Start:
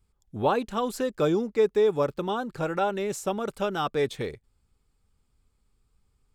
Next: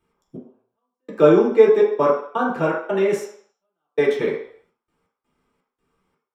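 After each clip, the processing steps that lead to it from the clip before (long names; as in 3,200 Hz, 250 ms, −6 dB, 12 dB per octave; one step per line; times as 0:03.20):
gate pattern "xx....xxxx.x.xx." 83 BPM −60 dB
convolution reverb RT60 0.60 s, pre-delay 3 ms, DRR −6 dB
level −3.5 dB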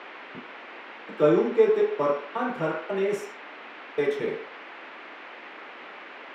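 downward expander −35 dBFS
noise in a band 260–2,500 Hz −36 dBFS
level −7 dB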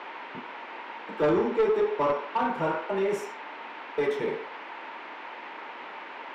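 parametric band 920 Hz +11 dB 0.24 octaves
soft clipping −18 dBFS, distortion −12 dB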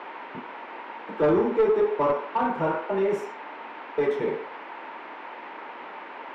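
high-shelf EQ 2,500 Hz −10 dB
level +3 dB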